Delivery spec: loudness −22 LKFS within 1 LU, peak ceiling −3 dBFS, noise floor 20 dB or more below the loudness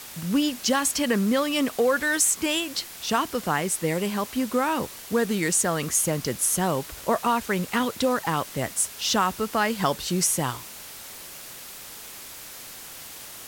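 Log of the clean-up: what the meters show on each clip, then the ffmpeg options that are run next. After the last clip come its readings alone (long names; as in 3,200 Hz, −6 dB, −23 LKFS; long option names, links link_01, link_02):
background noise floor −41 dBFS; target noise floor −45 dBFS; integrated loudness −24.5 LKFS; sample peak −9.5 dBFS; target loudness −22.0 LKFS
→ -af "afftdn=noise_reduction=6:noise_floor=-41"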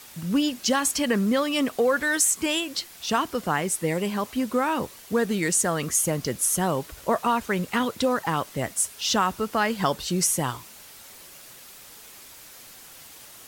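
background noise floor −47 dBFS; integrated loudness −24.5 LKFS; sample peak −9.0 dBFS; target loudness −22.0 LKFS
→ -af "volume=2.5dB"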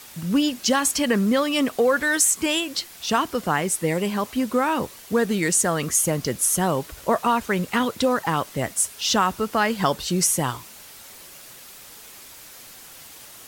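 integrated loudness −22.0 LKFS; sample peak −6.5 dBFS; background noise floor −44 dBFS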